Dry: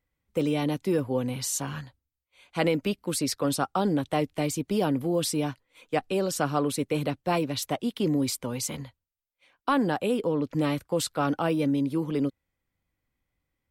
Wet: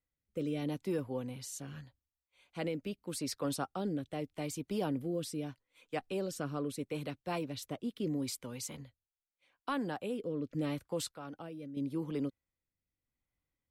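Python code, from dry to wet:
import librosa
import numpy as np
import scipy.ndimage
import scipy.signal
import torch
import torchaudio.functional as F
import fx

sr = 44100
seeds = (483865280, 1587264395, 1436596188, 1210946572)

y = fx.rotary(x, sr, hz=0.8)
y = fx.level_steps(y, sr, step_db=12, at=(11.11, 11.77))
y = y * 10.0 ** (-8.5 / 20.0)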